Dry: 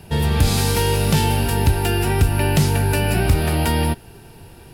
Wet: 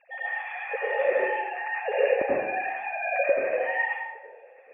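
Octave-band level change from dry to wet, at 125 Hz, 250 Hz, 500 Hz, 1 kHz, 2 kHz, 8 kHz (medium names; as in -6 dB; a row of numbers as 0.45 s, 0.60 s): under -40 dB, -21.5 dB, -1.0 dB, -5.0 dB, -0.5 dB, under -40 dB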